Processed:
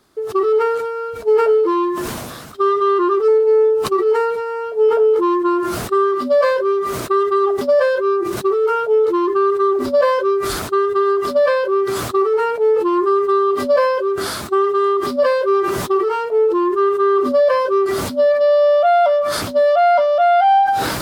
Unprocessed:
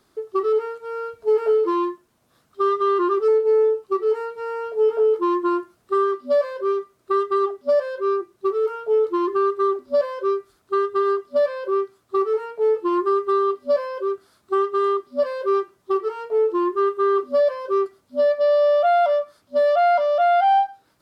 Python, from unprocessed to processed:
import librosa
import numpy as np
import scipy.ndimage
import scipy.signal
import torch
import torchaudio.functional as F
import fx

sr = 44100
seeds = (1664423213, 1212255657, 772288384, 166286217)

y = fx.sustainer(x, sr, db_per_s=31.0)
y = y * 10.0 ** (4.0 / 20.0)